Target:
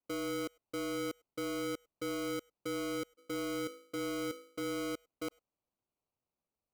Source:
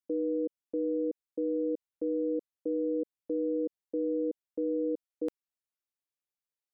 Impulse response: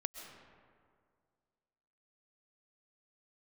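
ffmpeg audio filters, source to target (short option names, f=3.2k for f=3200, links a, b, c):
-filter_complex "[0:a]asplit=3[a][b][c];[a]afade=t=out:st=3.17:d=0.02[d];[b]bandreject=f=54.51:t=h:w=4,bandreject=f=109.02:t=h:w=4,bandreject=f=163.53:t=h:w=4,bandreject=f=218.04:t=h:w=4,bandreject=f=272.55:t=h:w=4,bandreject=f=327.06:t=h:w=4,bandreject=f=381.57:t=h:w=4,bandreject=f=436.08:t=h:w=4,bandreject=f=490.59:t=h:w=4,bandreject=f=545.1:t=h:w=4,bandreject=f=599.61:t=h:w=4,bandreject=f=654.12:t=h:w=4,bandreject=f=708.63:t=h:w=4,bandreject=f=763.14:t=h:w=4,bandreject=f=817.65:t=h:w=4,bandreject=f=872.16:t=h:w=4,bandreject=f=926.67:t=h:w=4,bandreject=f=981.18:t=h:w=4,bandreject=f=1.03569k:t=h:w=4,bandreject=f=1.0902k:t=h:w=4,bandreject=f=1.14471k:t=h:w=4,bandreject=f=1.19922k:t=h:w=4,bandreject=f=1.25373k:t=h:w=4,bandreject=f=1.30824k:t=h:w=4,bandreject=f=1.36275k:t=h:w=4,bandreject=f=1.41726k:t=h:w=4,bandreject=f=1.47177k:t=h:w=4,bandreject=f=1.52628k:t=h:w=4,bandreject=f=1.58079k:t=h:w=4,bandreject=f=1.6353k:t=h:w=4,bandreject=f=1.68981k:t=h:w=4,bandreject=f=1.74432k:t=h:w=4,bandreject=f=1.79883k:t=h:w=4,bandreject=f=1.85334k:t=h:w=4,bandreject=f=1.90785k:t=h:w=4,bandreject=f=1.96236k:t=h:w=4,bandreject=f=2.01687k:t=h:w=4,afade=t=in:st=3.17:d=0.02,afade=t=out:st=4.76:d=0.02[e];[c]afade=t=in:st=4.76:d=0.02[f];[d][e][f]amix=inputs=3:normalize=0,acrusher=samples=25:mix=1:aa=0.000001,asoftclip=type=tanh:threshold=-32.5dB[g];[1:a]atrim=start_sample=2205,afade=t=out:st=0.15:d=0.01,atrim=end_sample=7056[h];[g][h]afir=irnorm=-1:irlink=0,volume=1dB"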